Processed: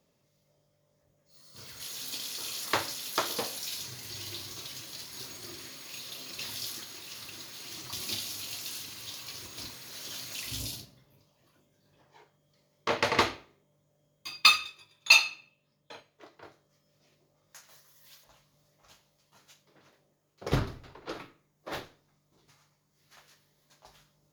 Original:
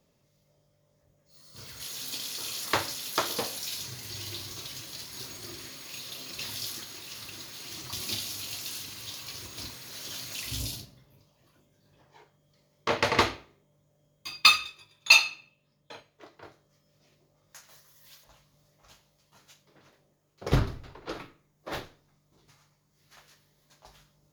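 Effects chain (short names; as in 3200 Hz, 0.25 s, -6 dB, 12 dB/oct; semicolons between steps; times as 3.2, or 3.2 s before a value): low shelf 91 Hz -7.5 dB; gain -1.5 dB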